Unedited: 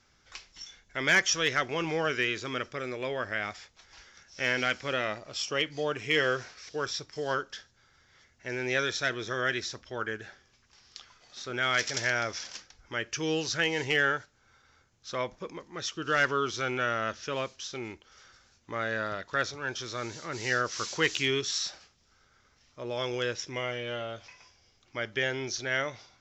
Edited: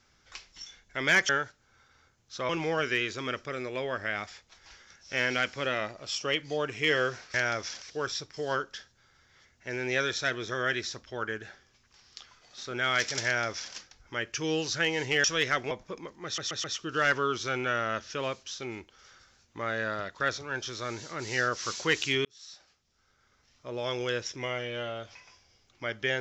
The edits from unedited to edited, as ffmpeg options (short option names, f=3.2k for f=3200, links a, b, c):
-filter_complex "[0:a]asplit=11[a][b][c][d][e][f][g][h][i][j][k];[a]atrim=end=1.292[l];[b]atrim=start=14.028:end=15.232[m];[c]atrim=start=1.758:end=6.612[n];[d]atrim=start=12.038:end=12.522[o];[e]atrim=start=6.608:end=14.032[p];[f]atrim=start=1.288:end=1.762[q];[g]atrim=start=15.228:end=15.902[r];[h]atrim=start=15.768:end=15.902[s];[i]atrim=start=15.768:end=15.902[t];[j]atrim=start=15.768:end=21.38,asetpts=PTS-STARTPTS,afade=t=out:st=5.608:d=0.004:c=hsin[u];[k]atrim=start=21.38,asetpts=PTS-STARTPTS,afade=t=in:d=1.44[v];[l][m]acrossfade=d=0.004:c1=hsin:c2=hsin[w];[w][n]acrossfade=d=0.004:c1=hsin:c2=hsin[x];[x][o]acrossfade=d=0.004:c1=hsin:c2=hsin[y];[y][p]acrossfade=d=0.004:c1=hsin:c2=hsin[z];[z][q]acrossfade=d=0.004:c1=hsin:c2=hsin[aa];[aa][r]acrossfade=d=0.004:c1=hsin:c2=hsin[ab];[ab][s]acrossfade=d=0.004:c1=hsin:c2=hsin[ac];[ac][t]acrossfade=d=0.004:c1=hsin:c2=hsin[ad];[u][v]concat=n=2:v=0:a=1[ae];[ad][ae]acrossfade=d=0.004:c1=hsin:c2=hsin"